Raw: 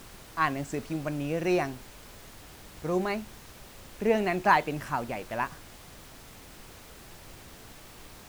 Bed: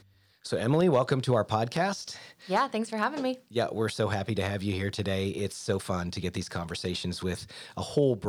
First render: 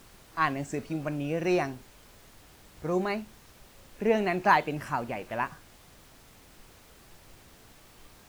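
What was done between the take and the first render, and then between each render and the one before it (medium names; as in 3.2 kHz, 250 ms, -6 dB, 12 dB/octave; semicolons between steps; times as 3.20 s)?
noise print and reduce 6 dB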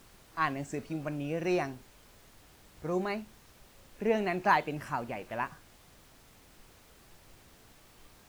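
trim -3.5 dB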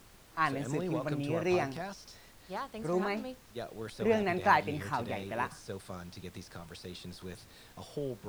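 add bed -13 dB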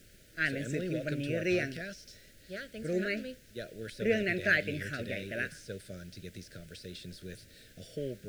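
elliptic band-stop 610–1500 Hz, stop band 60 dB; dynamic bell 2 kHz, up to +6 dB, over -52 dBFS, Q 0.83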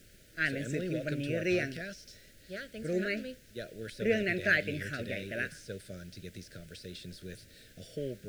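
no audible change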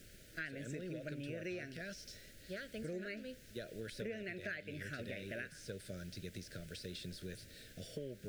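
compression 8:1, threshold -41 dBFS, peak gain reduction 19 dB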